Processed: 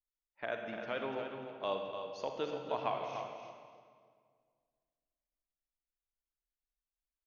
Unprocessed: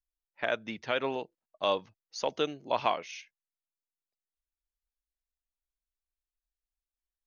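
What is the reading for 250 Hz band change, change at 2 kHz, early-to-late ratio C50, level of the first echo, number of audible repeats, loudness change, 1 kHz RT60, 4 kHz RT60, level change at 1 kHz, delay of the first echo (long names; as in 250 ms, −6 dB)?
−5.0 dB, −7.5 dB, 2.5 dB, −8.0 dB, 2, −7.0 dB, 1.8 s, 1.5 s, −6.0 dB, 295 ms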